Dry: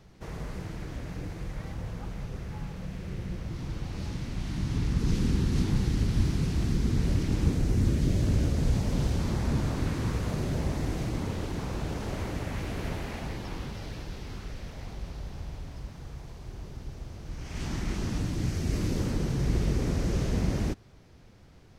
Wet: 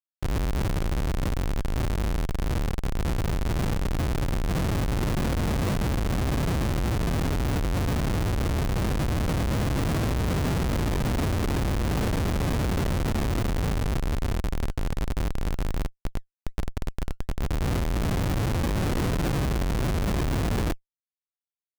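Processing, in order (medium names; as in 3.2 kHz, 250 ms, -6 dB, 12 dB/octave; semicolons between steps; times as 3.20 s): peak limiter -22 dBFS, peak gain reduction 9.5 dB; Schmitt trigger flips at -33.5 dBFS; decimation with a swept rate 18×, swing 160% 1.3 Hz; trim +7.5 dB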